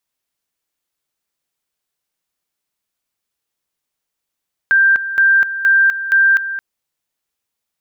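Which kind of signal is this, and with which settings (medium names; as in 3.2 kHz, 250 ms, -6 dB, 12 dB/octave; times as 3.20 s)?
two-level tone 1.58 kHz -8 dBFS, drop 12 dB, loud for 0.25 s, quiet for 0.22 s, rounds 4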